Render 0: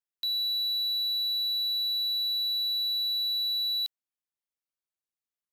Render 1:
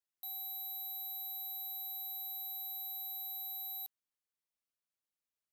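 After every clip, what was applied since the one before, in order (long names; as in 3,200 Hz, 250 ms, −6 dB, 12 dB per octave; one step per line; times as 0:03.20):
wave folding −35.5 dBFS
level −2.5 dB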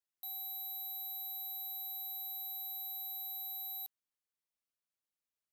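no processing that can be heard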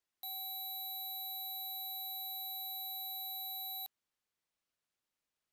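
high-shelf EQ 9,000 Hz −11.5 dB
level +6.5 dB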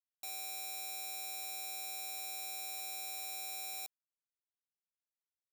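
bit reduction 6 bits
level +1 dB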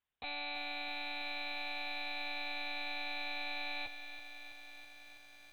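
one-pitch LPC vocoder at 8 kHz 290 Hz
feedback echo at a low word length 327 ms, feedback 80%, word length 12 bits, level −10 dB
level +10.5 dB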